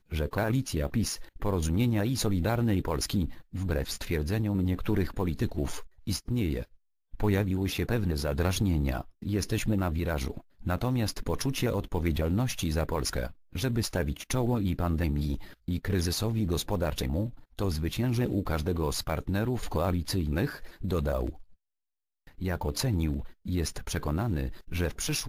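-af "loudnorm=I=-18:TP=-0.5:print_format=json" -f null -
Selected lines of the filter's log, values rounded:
"input_i" : "-30.6",
"input_tp" : "-11.0",
"input_lra" : "2.5",
"input_thresh" : "-40.6",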